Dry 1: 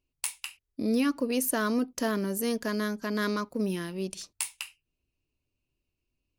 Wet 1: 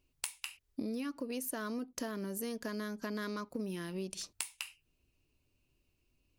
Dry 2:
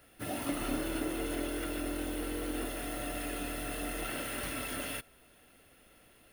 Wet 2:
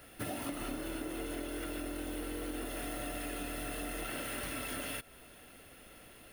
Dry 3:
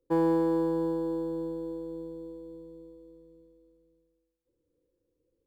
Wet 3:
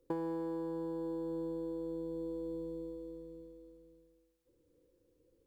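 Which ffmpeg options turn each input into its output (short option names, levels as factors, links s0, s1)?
-af "acompressor=threshold=0.00794:ratio=10,volume=2"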